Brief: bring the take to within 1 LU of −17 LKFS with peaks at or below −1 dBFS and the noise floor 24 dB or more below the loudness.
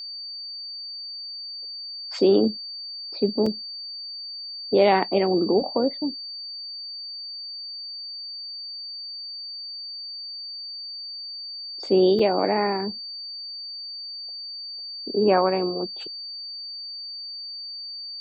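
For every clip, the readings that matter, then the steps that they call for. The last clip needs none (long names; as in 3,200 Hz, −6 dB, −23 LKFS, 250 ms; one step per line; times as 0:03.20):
number of dropouts 2; longest dropout 4.3 ms; interfering tone 4,600 Hz; level of the tone −33 dBFS; integrated loudness −26.5 LKFS; sample peak −6.5 dBFS; target loudness −17.0 LKFS
→ repair the gap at 0:03.46/0:12.19, 4.3 ms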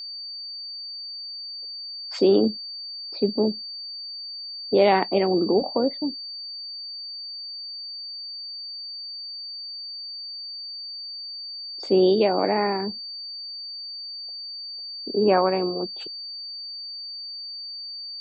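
number of dropouts 0; interfering tone 4,600 Hz; level of the tone −33 dBFS
→ notch filter 4,600 Hz, Q 30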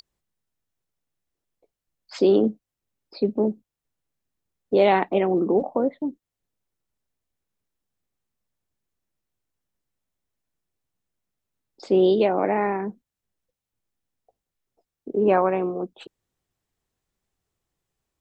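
interfering tone none found; integrated loudness −22.5 LKFS; sample peak −7.0 dBFS; target loudness −17.0 LKFS
→ level +5.5 dB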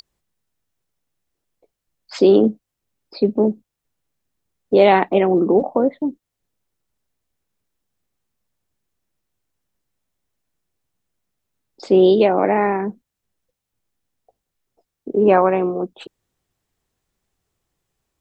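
integrated loudness −17.0 LKFS; sample peak −1.5 dBFS; background noise floor −82 dBFS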